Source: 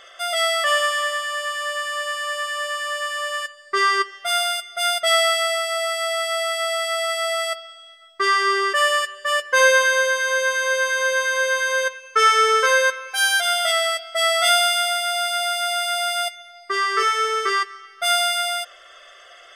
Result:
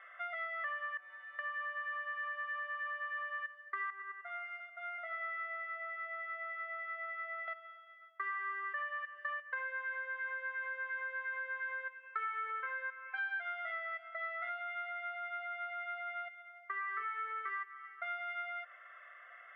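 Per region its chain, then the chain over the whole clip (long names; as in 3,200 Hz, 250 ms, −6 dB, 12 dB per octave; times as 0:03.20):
0:00.97–0:01.39: linear delta modulator 32 kbit/s, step −34.5 dBFS + stiff-string resonator 180 Hz, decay 0.35 s, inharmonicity 0.002
0:03.90–0:07.48: high-shelf EQ 2,400 Hz −11.5 dB + tuned comb filter 87 Hz, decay 1.7 s, harmonics odd + repeating echo 95 ms, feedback 33%, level −3 dB
0:14.08–0:16.88: phase distortion by the signal itself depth 0.08 ms + high-frequency loss of the air 90 metres
whole clip: Chebyshev low-pass filter 2,100 Hz, order 4; downward compressor 6 to 1, threshold −31 dBFS; high-pass filter 1,200 Hz 12 dB per octave; level −4 dB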